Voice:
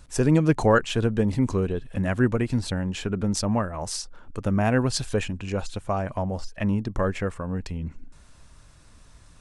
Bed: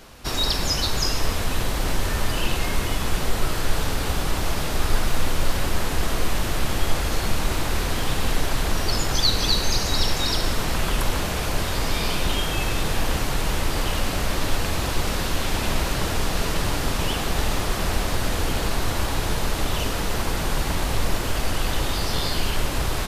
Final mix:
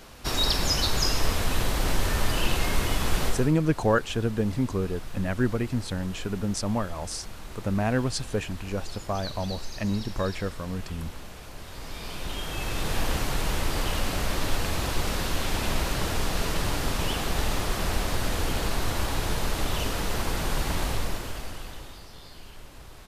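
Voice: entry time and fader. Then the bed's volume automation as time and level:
3.20 s, -3.5 dB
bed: 3.27 s -1.5 dB
3.56 s -18 dB
11.57 s -18 dB
12.97 s -3.5 dB
20.86 s -3.5 dB
22.11 s -22 dB

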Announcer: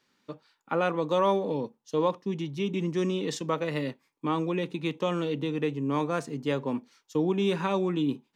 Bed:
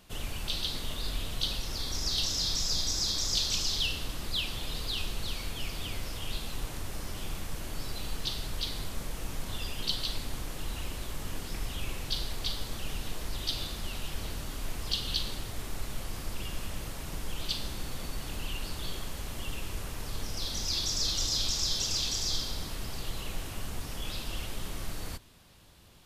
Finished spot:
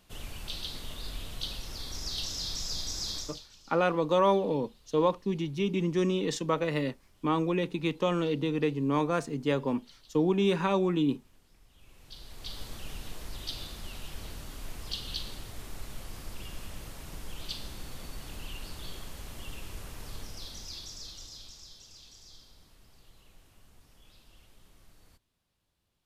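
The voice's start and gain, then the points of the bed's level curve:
3.00 s, +0.5 dB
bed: 3.18 s -5 dB
3.49 s -26 dB
11.69 s -26 dB
12.60 s -5 dB
20.13 s -5 dB
21.82 s -22 dB

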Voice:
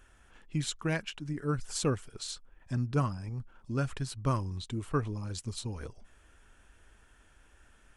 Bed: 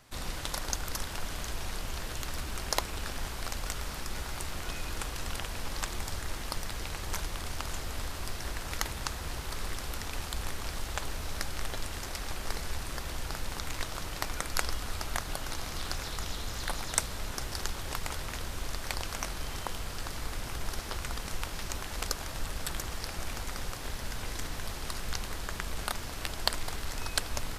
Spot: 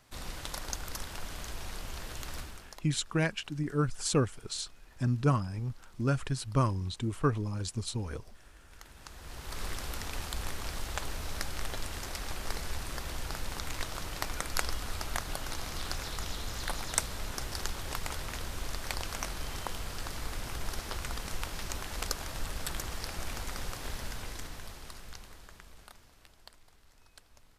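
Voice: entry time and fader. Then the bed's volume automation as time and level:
2.30 s, +2.5 dB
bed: 2.40 s -4 dB
2.83 s -23.5 dB
8.67 s -23.5 dB
9.62 s -1 dB
23.99 s -1 dB
26.60 s -26 dB

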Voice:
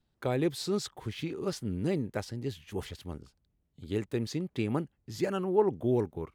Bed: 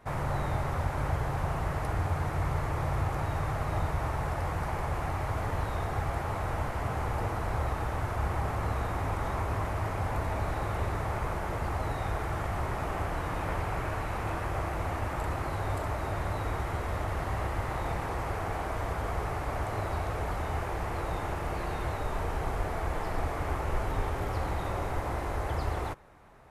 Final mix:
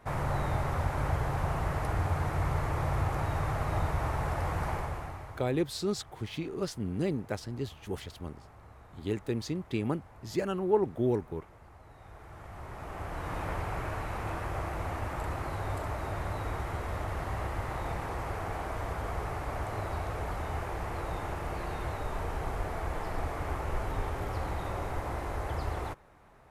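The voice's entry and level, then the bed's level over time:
5.15 s, -0.5 dB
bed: 4.72 s 0 dB
5.71 s -22 dB
11.85 s -22 dB
13.34 s -2.5 dB

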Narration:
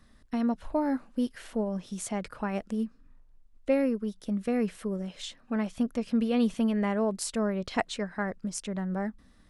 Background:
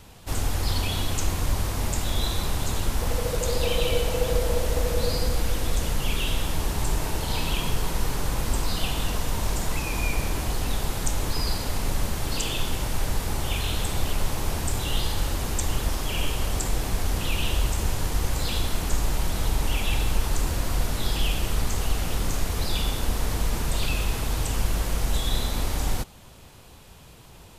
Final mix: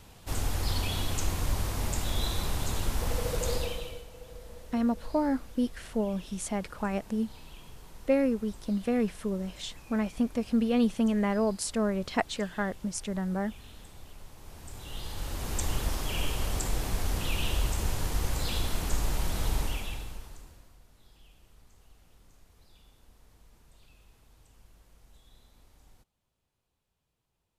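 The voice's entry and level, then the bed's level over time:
4.40 s, +0.5 dB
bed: 3.54 s -4.5 dB
4.07 s -23 dB
14.35 s -23 dB
15.60 s -4.5 dB
19.59 s -4.5 dB
20.80 s -33.5 dB

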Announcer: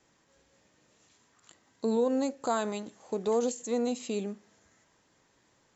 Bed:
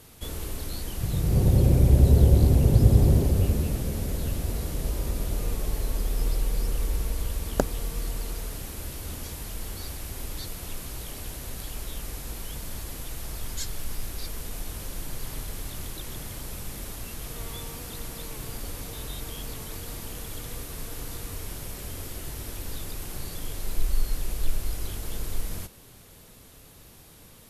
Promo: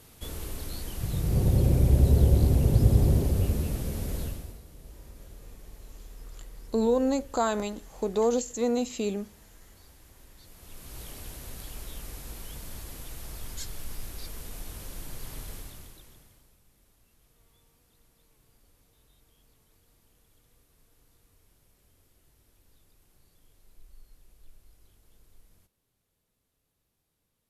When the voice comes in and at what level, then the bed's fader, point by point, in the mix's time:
4.90 s, +3.0 dB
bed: 4.22 s -3 dB
4.63 s -19 dB
10.37 s -19 dB
11.00 s -5 dB
15.54 s -5 dB
16.60 s -28 dB

